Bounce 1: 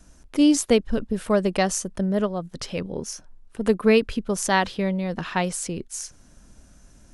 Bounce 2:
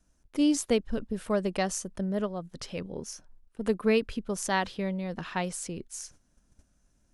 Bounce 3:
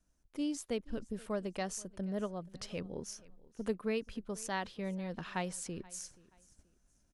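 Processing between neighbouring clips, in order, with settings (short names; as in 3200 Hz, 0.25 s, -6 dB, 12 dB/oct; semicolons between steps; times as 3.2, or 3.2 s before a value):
gate -45 dBFS, range -10 dB; gain -7 dB
vocal rider within 4 dB 0.5 s; feedback echo 0.479 s, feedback 31%, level -22.5 dB; gain -8.5 dB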